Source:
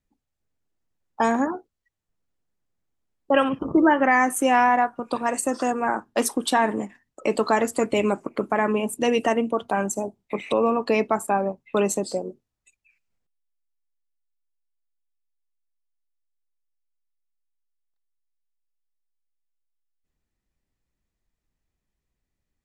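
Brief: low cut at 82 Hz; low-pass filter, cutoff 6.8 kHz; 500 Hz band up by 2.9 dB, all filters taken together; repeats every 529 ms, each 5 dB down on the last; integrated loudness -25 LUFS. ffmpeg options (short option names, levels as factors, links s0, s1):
-af "highpass=82,lowpass=6800,equalizer=f=500:t=o:g=3.5,aecho=1:1:529|1058|1587|2116|2645|3174|3703:0.562|0.315|0.176|0.0988|0.0553|0.031|0.0173,volume=0.596"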